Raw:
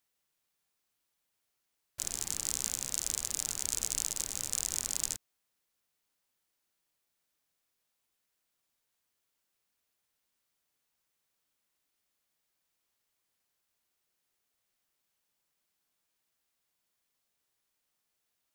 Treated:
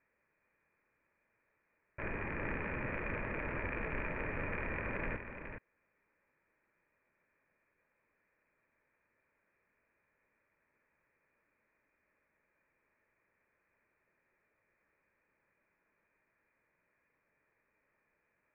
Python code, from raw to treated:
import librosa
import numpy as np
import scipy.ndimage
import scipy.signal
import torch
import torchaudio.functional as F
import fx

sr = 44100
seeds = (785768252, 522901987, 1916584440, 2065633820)

y = scipy.signal.sosfilt(scipy.signal.cheby1(6, 6, 2500.0, 'lowpass', fs=sr, output='sos'), x)
y = fx.peak_eq(y, sr, hz=740.0, db=-13.5, octaves=0.24)
y = y + 10.0 ** (-7.5 / 20.0) * np.pad(y, (int(418 * sr / 1000.0), 0))[:len(y)]
y = y * librosa.db_to_amplitude(15.0)